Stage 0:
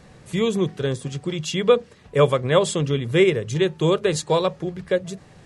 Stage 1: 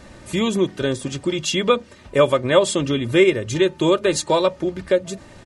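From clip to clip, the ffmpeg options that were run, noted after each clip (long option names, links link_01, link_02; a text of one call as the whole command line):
ffmpeg -i in.wav -filter_complex "[0:a]aecho=1:1:3.3:0.59,asplit=2[link_01][link_02];[link_02]acompressor=threshold=-25dB:ratio=6,volume=0.5dB[link_03];[link_01][link_03]amix=inputs=2:normalize=0,volume=-1dB" out.wav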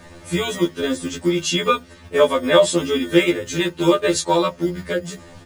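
ffmpeg -i in.wav -filter_complex "[0:a]acrossover=split=240[link_01][link_02];[link_01]acrusher=samples=26:mix=1:aa=0.000001[link_03];[link_03][link_02]amix=inputs=2:normalize=0,afftfilt=real='re*2*eq(mod(b,4),0)':imag='im*2*eq(mod(b,4),0)':win_size=2048:overlap=0.75,volume=3.5dB" out.wav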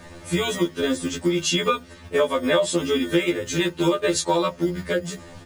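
ffmpeg -i in.wav -af "acompressor=threshold=-17dB:ratio=4" out.wav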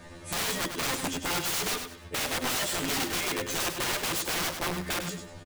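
ffmpeg -i in.wav -af "aeval=exprs='(mod(10.6*val(0)+1,2)-1)/10.6':channel_layout=same,aecho=1:1:99|198|297:0.422|0.114|0.0307,volume=-4.5dB" out.wav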